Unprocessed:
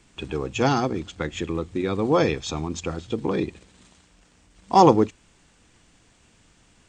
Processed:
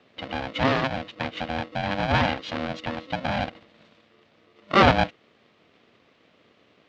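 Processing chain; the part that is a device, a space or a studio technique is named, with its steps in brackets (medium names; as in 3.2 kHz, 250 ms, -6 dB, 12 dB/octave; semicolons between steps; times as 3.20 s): ring modulator pedal into a guitar cabinet (polarity switched at an audio rate 400 Hz; cabinet simulation 96–3900 Hz, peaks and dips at 240 Hz +3 dB, 380 Hz -5 dB, 880 Hz -4 dB, 1.4 kHz -3 dB)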